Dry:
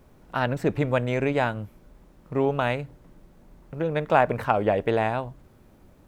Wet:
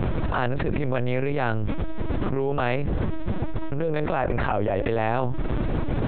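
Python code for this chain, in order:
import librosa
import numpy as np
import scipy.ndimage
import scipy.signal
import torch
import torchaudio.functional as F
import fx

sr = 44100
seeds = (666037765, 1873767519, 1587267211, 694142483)

y = fx.low_shelf(x, sr, hz=200.0, db=4.5)
y = fx.lpc_vocoder(y, sr, seeds[0], excitation='pitch_kept', order=10)
y = fx.env_flatten(y, sr, amount_pct=100)
y = y * 10.0 ** (-7.5 / 20.0)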